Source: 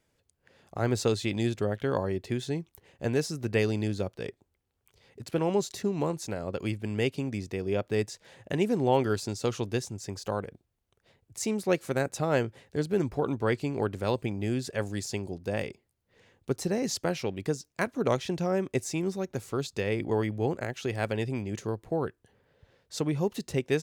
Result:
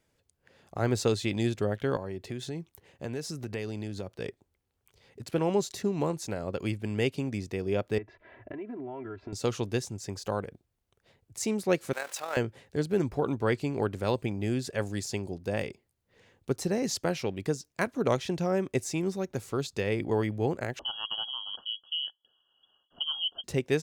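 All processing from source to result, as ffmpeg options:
-filter_complex "[0:a]asettb=1/sr,asplit=3[s0][s1][s2];[s0]atrim=end=1.964[s3];[s1]atrim=start=1.96:end=4.19,asetpts=PTS-STARTPTS,afade=t=in:d=0.004:c=qsin,afade=t=out:st=2.226:d=0.004:c=qsin,highpass=48,acompressor=threshold=0.0224:ratio=3:attack=3.2:release=140:knee=1:detection=peak[s4];[s2]atrim=start=4.186[s5];[s3][s4]acrossfade=d=0.004:c1=hsin:c2=qsin[s6];[s6][s5]acrossfade=d=0.004:c1=qsin:c2=hsin,asettb=1/sr,asplit=3[s7][s8][s9];[s7]atrim=end=7.984[s10];[s8]atrim=start=7.98:end=9.33,asetpts=PTS-STARTPTS,afade=t=in:d=0.004:c=qsin,afade=t=out:st=1.346:d=0.004:c=qsin,lowpass=f=2200:w=0.5412,lowpass=f=2200:w=1.3066,aecho=1:1:3:0.94,atrim=end_sample=59535,acompressor=threshold=0.0158:ratio=8:attack=3.2:release=140:knee=1:detection=peak[s11];[s9]atrim=start=9.326[s12];[s10][s11]acrossfade=d=0.004:c1=hsin:c2=qsin[s13];[s13][s12]acrossfade=d=0.004:c1=qsin:c2=hsin,asettb=1/sr,asplit=3[s14][s15][s16];[s14]atrim=end=11.934[s17];[s15]atrim=start=11.93:end=12.37,asetpts=PTS-STARTPTS,afade=t=in:d=0.004:c=qsin,afade=t=out:st=0.436:d=0.004:c=qsin,aeval=exprs='val(0)+0.5*0.0168*sgn(val(0))':c=same,highpass=900,tremolo=f=42:d=0.462[s18];[s16]atrim=start=12.366[s19];[s17][s18]acrossfade=d=0.004:c1=hsin:c2=qsin[s20];[s20][s19]acrossfade=d=0.004:c1=qsin:c2=hsin,asettb=1/sr,asplit=3[s21][s22][s23];[s21]atrim=end=20.794[s24];[s22]atrim=start=20.79:end=23.44,asetpts=PTS-STARTPTS,afade=t=in:d=0.004:c=qsin,afade=t=out:st=2.646:d=0.004:c=qsin,asuperstop=centerf=1100:order=8:qfactor=0.72,lowshelf=f=270:g=-9,lowpass=f=2900:t=q:w=0.5098,lowpass=f=2900:t=q:w=0.6013,lowpass=f=2900:t=q:w=0.9,lowpass=f=2900:t=q:w=2.563,afreqshift=-3400[s25];[s23]atrim=start=23.436[s26];[s24][s25]acrossfade=d=0.004:c1=hsin:c2=qsin[s27];[s27][s26]acrossfade=d=0.004:c1=qsin:c2=hsin"

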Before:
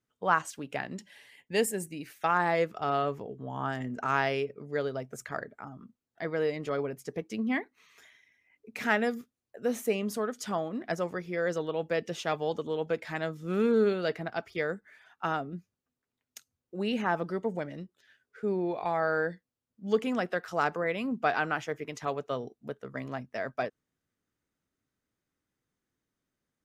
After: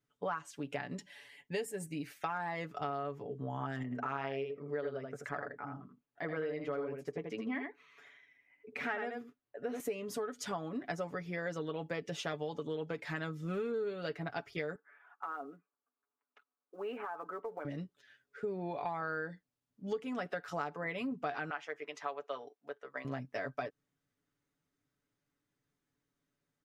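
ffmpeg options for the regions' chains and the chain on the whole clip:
-filter_complex "[0:a]asettb=1/sr,asplit=3[s0][s1][s2];[s0]atrim=end=3.834[s3];[s1]atrim=start=3.83:end=9.8,asetpts=PTS-STARTPTS,afade=t=in:d=0.004:c=qsin,afade=t=out:st=5.966:d=0.004:c=qsin,bass=f=250:g=-5,treble=f=4000:g=-13,aecho=1:1:81:0.501,atrim=end_sample=263277[s4];[s2]atrim=start=9.796[s5];[s3][s4]acrossfade=d=0.004:c1=hsin:c2=qsin[s6];[s6][s5]acrossfade=d=0.004:c1=qsin:c2=hsin,asettb=1/sr,asplit=3[s7][s8][s9];[s7]atrim=end=14.754[s10];[s8]atrim=start=14.75:end=17.65,asetpts=PTS-STARTPTS,afade=t=in:d=0.004:c=qsin,afade=t=out:st=2.896:d=0.004:c=qsin,highpass=f=340:w=0.5412,highpass=f=340:w=1.3066,equalizer=f=360:t=q:w=4:g=-7,equalizer=f=570:t=q:w=4:g=-6,equalizer=f=1200:t=q:w=4:g=6,equalizer=f=1900:t=q:w=4:g=-9,lowpass=f=2000:w=0.5412,lowpass=f=2000:w=1.3066,acompressor=threshold=0.0178:ratio=12:attack=3.2:release=140:knee=1:detection=peak,acrusher=bits=9:mode=log:mix=0:aa=0.000001[s11];[s9]atrim=start=17.646[s12];[s10][s11]acrossfade=d=0.004:c1=hsin:c2=qsin[s13];[s13][s12]acrossfade=d=0.004:c1=qsin:c2=hsin,asettb=1/sr,asplit=3[s14][s15][s16];[s14]atrim=end=21.504[s17];[s15]atrim=start=21.5:end=23.05,asetpts=PTS-STARTPTS,afade=t=in:d=0.004:c=qsin,afade=t=out:st=1.546:d=0.004:c=qsin,highpass=630,aemphasis=mode=reproduction:type=50kf[s18];[s16]atrim=start=23.046[s19];[s17][s18]acrossfade=d=0.004:c1=hsin:c2=qsin[s20];[s20][s19]acrossfade=d=0.004:c1=qsin:c2=hsin,highshelf=f=8500:g=-6.5,aecho=1:1:7:0.65,acompressor=threshold=0.0224:ratio=6,volume=0.841"

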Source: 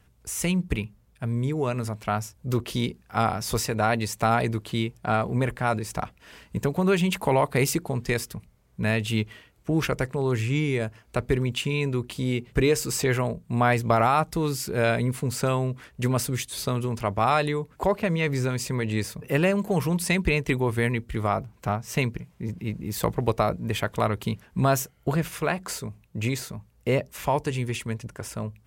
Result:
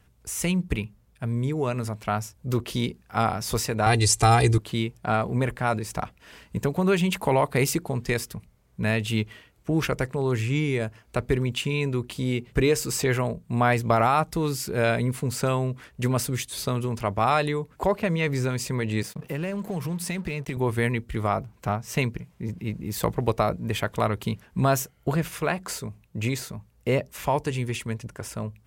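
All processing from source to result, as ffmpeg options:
-filter_complex "[0:a]asettb=1/sr,asplit=3[s0][s1][s2];[s0]atrim=end=3.864[s3];[s1]atrim=start=3.86:end=4.58,asetpts=PTS-STARTPTS,afade=t=in:d=0.004:c=qsin,afade=t=out:st=0.716:d=0.004:c=qsin,lowpass=f=10000:w=0.5412,lowpass=f=10000:w=1.3066,bass=f=250:g=8,treble=f=4000:g=13,aecho=1:1:2.5:0.85,atrim=end_sample=31752[s4];[s2]atrim=start=4.576[s5];[s3][s4]acrossfade=d=0.004:c1=hsin:c2=qsin[s6];[s6][s5]acrossfade=d=0.004:c1=qsin:c2=hsin,asettb=1/sr,asplit=3[s7][s8][s9];[s7]atrim=end=19.024[s10];[s8]atrim=start=19.02:end=20.57,asetpts=PTS-STARTPTS,afade=t=in:d=0.004:c=qsin,afade=t=out:st=1.546:d=0.004:c=qsin,lowshelf=f=110:t=q:w=3:g=-6.5,acompressor=threshold=0.0501:ratio=5:attack=3.2:release=140:knee=1:detection=peak,aeval=exprs='sgn(val(0))*max(abs(val(0))-0.00447,0)':c=same[s11];[s9]atrim=start=20.566[s12];[s10][s11]acrossfade=d=0.004:c1=hsin:c2=qsin[s13];[s13][s12]acrossfade=d=0.004:c1=qsin:c2=hsin"

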